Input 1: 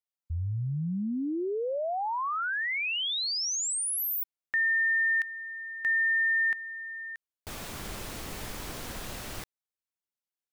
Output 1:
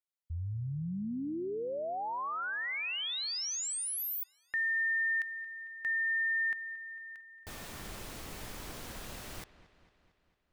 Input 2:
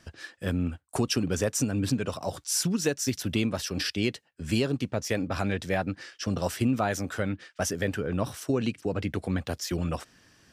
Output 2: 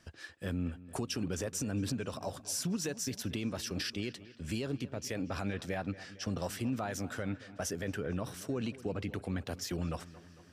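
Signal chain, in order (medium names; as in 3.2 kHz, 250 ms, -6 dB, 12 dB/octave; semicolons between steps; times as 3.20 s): peak limiter -20.5 dBFS; on a send: feedback echo behind a low-pass 226 ms, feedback 59%, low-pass 3.6 kHz, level -17 dB; on the sum: trim -5.5 dB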